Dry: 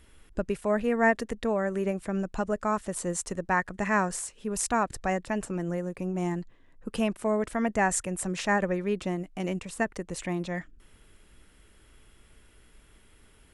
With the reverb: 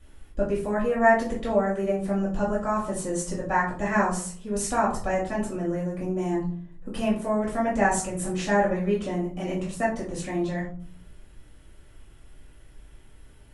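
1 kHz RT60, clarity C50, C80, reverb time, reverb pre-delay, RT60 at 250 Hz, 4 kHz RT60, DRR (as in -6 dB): 0.45 s, 6.5 dB, 11.5 dB, 0.50 s, 4 ms, 0.80 s, 0.25 s, -8.0 dB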